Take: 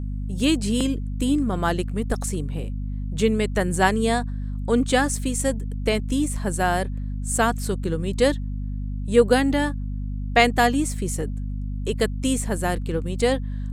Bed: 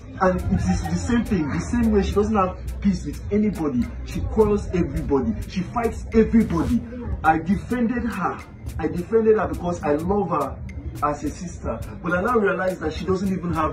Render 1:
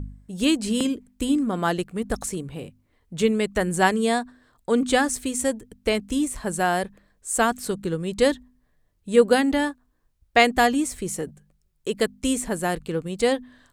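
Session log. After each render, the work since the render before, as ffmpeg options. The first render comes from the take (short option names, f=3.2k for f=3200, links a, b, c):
-af "bandreject=f=50:t=h:w=4,bandreject=f=100:t=h:w=4,bandreject=f=150:t=h:w=4,bandreject=f=200:t=h:w=4,bandreject=f=250:t=h:w=4"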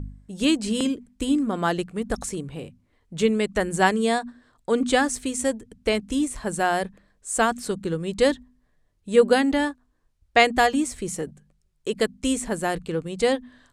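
-af "lowpass=9.8k,bandreject=f=60:t=h:w=6,bandreject=f=120:t=h:w=6,bandreject=f=180:t=h:w=6,bandreject=f=240:t=h:w=6"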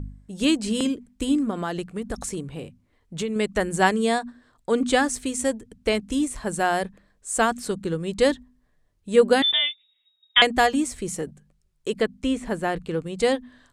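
-filter_complex "[0:a]asettb=1/sr,asplit=3[a][b][c];[a]atrim=end=1.504[d];[b]atrim=start=1.5:end=3.36,asetpts=PTS-STARTPTS,afade=t=in:d=0.004:c=qsin,afade=t=out:st=1.856:d=0.004:c=qsin,acompressor=threshold=-24dB:ratio=4:attack=3.2:release=140:knee=1:detection=peak[e];[c]atrim=start=3.356[f];[d][e]acrossfade=d=0.004:c1=hsin:c2=qsin[g];[g][f]acrossfade=d=0.004:c1=qsin:c2=hsin,asettb=1/sr,asplit=3[h][i][j];[h]atrim=end=9.424[k];[i]atrim=start=9.42:end=10.42,asetpts=PTS-STARTPTS,afade=t=in:d=0.004:c=qsin,afade=t=out:st=0.996:d=0.004:c=qsin,lowpass=f=3.2k:t=q:w=0.5098,lowpass=f=3.2k:t=q:w=0.6013,lowpass=f=3.2k:t=q:w=0.9,lowpass=f=3.2k:t=q:w=2.563,afreqshift=-3800[l];[j]atrim=start=10.416[m];[k][l]acrossfade=d=0.004:c1=hsin:c2=qsin[n];[n][m]acrossfade=d=0.004:c1=qsin:c2=hsin,asettb=1/sr,asplit=3[o][p][q];[o]atrim=end=11.924[r];[p]atrim=start=11.92:end=13.2,asetpts=PTS-STARTPTS,afade=t=in:d=0.004:c=qsin,afade=t=out:st=1.276:d=0.004:c=qsin,acrossover=split=3700[s][t];[t]acompressor=threshold=-46dB:ratio=4:attack=1:release=60[u];[s][u]amix=inputs=2:normalize=0[v];[q]atrim=start=13.196[w];[r][v]acrossfade=d=0.004:c1=hsin:c2=qsin[x];[x][w]acrossfade=d=0.004:c1=qsin:c2=hsin"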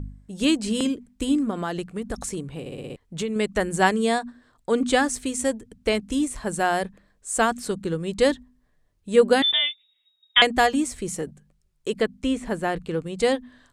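-filter_complex "[0:a]asplit=7[a][b][c][d][e][f][g];[a]atrim=end=2.662[h];[b]atrim=start=2.598:end=2.662[i];[c]atrim=start=2.598:end=2.662[j];[d]atrim=start=2.598:end=2.662[k];[e]atrim=start=2.598:end=2.662[l];[f]atrim=start=2.598:end=2.662[m];[g]atrim=start=2.958[n];[h][i]acrossfade=d=0.004:c1=hsin:c2=hsin[o];[o][j]acrossfade=d=0.004:c1=hsin:c2=hsin[p];[p][k]acrossfade=d=0.004:c1=hsin:c2=hsin[q];[q][l]acrossfade=d=0.004:c1=hsin:c2=hsin[r];[r][m]acrossfade=d=0.004:c1=hsin:c2=hsin[s];[s][n]acrossfade=d=0.004:c1=hsin:c2=hsin"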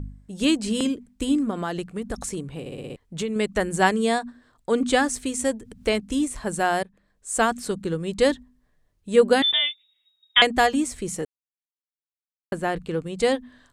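-filter_complex "[0:a]asettb=1/sr,asplit=3[a][b][c];[a]atrim=end=5.344[d];[b]atrim=start=5.34:end=6.06,asetpts=PTS-STARTPTS,afade=t=in:d=0.004:c=qsin,afade=t=out:st=0.716:d=0.004:c=qsin,acompressor=mode=upward:threshold=-34dB:ratio=2.5:attack=3.2:release=140:knee=2.83:detection=peak[e];[c]atrim=start=6.056[f];[d][e]acrossfade=d=0.004:c1=hsin:c2=qsin[g];[g][f]acrossfade=d=0.004:c1=qsin:c2=hsin,asplit=4[h][i][j][k];[h]atrim=end=6.83,asetpts=PTS-STARTPTS,afade=t=out:st=6.826:d=0.004:c=hsin:silence=0.149624[l];[i]atrim=start=6.83:end=11.25,asetpts=PTS-STARTPTS,afade=t=in:d=0.53:silence=0.149624,afade=t=out:st=4.416:d=0.004:c=hsin[m];[j]atrim=start=11.25:end=12.52,asetpts=PTS-STARTPTS,volume=0[n];[k]atrim=start=12.52,asetpts=PTS-STARTPTS,afade=t=in:d=0.004:c=hsin[o];[l][m][n][o]concat=n=4:v=0:a=1"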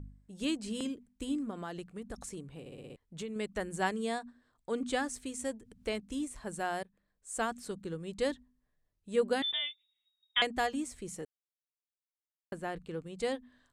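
-af "volume=-12.5dB"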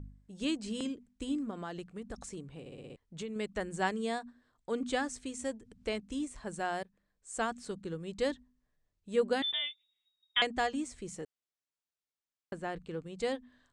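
-af "lowpass=f=8.5k:w=0.5412,lowpass=f=8.5k:w=1.3066"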